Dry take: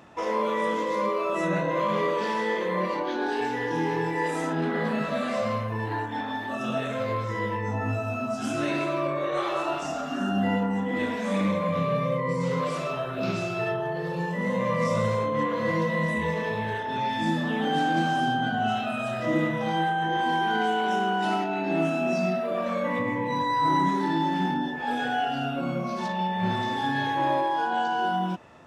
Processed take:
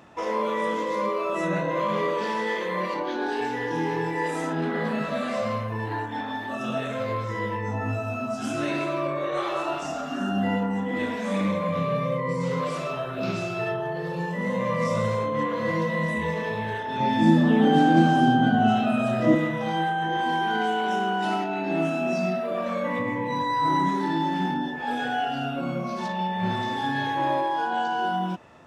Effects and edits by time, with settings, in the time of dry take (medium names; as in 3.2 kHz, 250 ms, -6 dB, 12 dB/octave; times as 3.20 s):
2.47–2.94 s: tilt shelf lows -3 dB
17.00–19.35 s: peaking EQ 240 Hz +10 dB 2.7 oct